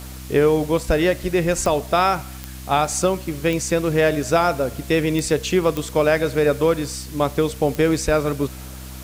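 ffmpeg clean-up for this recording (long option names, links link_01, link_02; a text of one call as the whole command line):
ffmpeg -i in.wav -af "adeclick=threshold=4,bandreject=frequency=64.2:width_type=h:width=4,bandreject=frequency=128.4:width_type=h:width=4,bandreject=frequency=192.6:width_type=h:width=4,bandreject=frequency=256.8:width_type=h:width=4,bandreject=frequency=321:width_type=h:width=4,afwtdn=0.0089" out.wav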